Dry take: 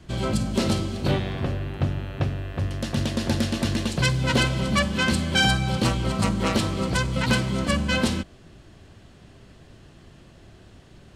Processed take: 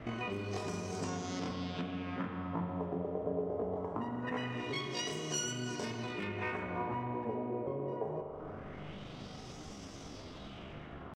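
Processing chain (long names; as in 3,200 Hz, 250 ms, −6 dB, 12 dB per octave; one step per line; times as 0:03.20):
dynamic equaliser 2,300 Hz, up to −6 dB, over −42 dBFS, Q 2.6
downward compressor 20 to 1, threshold −36 dBFS, peak gain reduction 20.5 dB
auto-filter low-pass sine 0.23 Hz 320–3,200 Hz
tape wow and flutter 24 cents
pitch shifter +11 semitones
spring reverb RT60 2.7 s, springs 40 ms, chirp 75 ms, DRR 3.5 dB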